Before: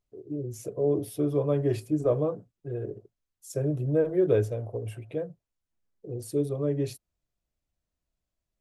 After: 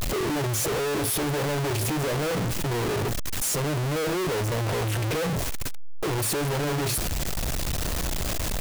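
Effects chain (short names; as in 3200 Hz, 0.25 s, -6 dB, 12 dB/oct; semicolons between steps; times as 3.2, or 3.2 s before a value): infinite clipping; gain +4 dB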